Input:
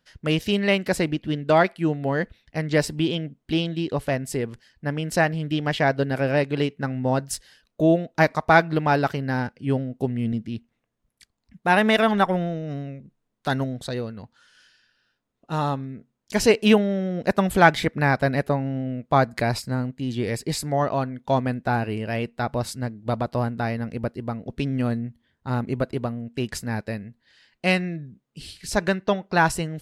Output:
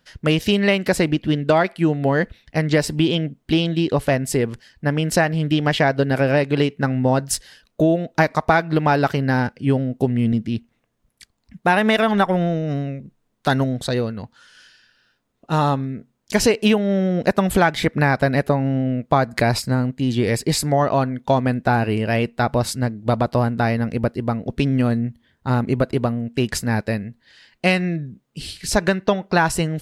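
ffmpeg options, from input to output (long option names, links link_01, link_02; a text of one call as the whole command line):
ffmpeg -i in.wav -af "acompressor=threshold=-20dB:ratio=6,volume=7.5dB" out.wav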